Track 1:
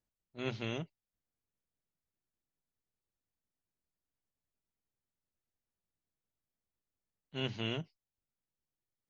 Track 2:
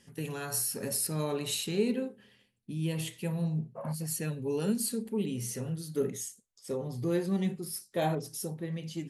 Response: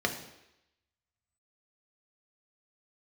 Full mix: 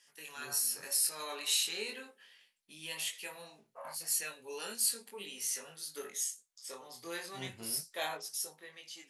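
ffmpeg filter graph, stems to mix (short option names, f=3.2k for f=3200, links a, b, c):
-filter_complex "[0:a]lowpass=2k,volume=-7.5dB[a];[1:a]highpass=1.1k,volume=1.5dB,asplit=2[b][c];[c]apad=whole_len=400942[d];[a][d]sidechaincompress=threshold=-43dB:ratio=8:attack=42:release=1450[e];[e][b]amix=inputs=2:normalize=0,equalizer=f=5.4k:t=o:w=0.77:g=2.5,dynaudnorm=f=280:g=7:m=4.5dB,flanger=delay=19.5:depth=4.6:speed=0.36"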